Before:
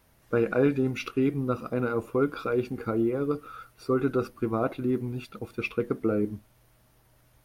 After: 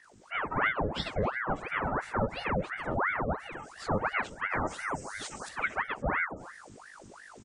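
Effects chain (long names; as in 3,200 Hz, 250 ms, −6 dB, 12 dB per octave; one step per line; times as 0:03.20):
partials spread apart or drawn together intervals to 85%
in parallel at −3 dB: downward compressor, threshold −40 dBFS, peak gain reduction 19.5 dB
0:04.66–0:05.49: on the sum: bass and treble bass −9 dB, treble +13 dB
soft clipping −15 dBFS, distortion −22 dB
spectral tilt +2 dB per octave
gate on every frequency bin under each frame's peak −30 dB strong
on a send: single-tap delay 266 ms −18 dB
on the sum: mains hum 50 Hz, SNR 18 dB
automatic gain control gain up to 7.5 dB
ring modulator whose carrier an LFO sweeps 1,000 Hz, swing 85%, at 2.9 Hz
level −5 dB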